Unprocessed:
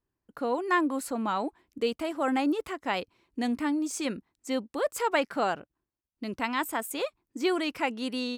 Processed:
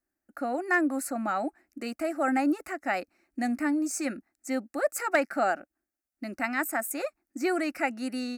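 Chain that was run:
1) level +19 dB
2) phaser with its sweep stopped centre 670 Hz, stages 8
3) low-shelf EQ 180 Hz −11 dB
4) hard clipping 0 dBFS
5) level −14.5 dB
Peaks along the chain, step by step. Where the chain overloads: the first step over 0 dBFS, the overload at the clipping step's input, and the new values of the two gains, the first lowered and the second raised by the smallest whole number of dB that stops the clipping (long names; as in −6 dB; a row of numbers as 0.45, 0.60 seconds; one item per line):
+6.0, +4.0, +4.5, 0.0, −14.5 dBFS
step 1, 4.5 dB
step 1 +14 dB, step 5 −9.5 dB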